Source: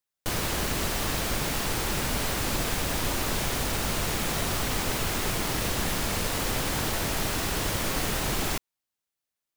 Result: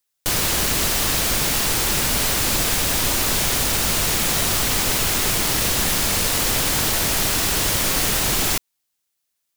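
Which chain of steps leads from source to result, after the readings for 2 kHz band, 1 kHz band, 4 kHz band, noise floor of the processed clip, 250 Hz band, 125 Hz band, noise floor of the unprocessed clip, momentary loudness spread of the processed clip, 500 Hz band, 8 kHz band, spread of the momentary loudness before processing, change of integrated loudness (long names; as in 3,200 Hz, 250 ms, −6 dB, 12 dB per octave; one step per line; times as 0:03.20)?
+7.0 dB, +5.0 dB, +10.0 dB, −76 dBFS, +4.0 dB, +4.0 dB, below −85 dBFS, 0 LU, +4.5 dB, +11.5 dB, 0 LU, +9.5 dB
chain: high-shelf EQ 2,600 Hz +8.5 dB
level +4 dB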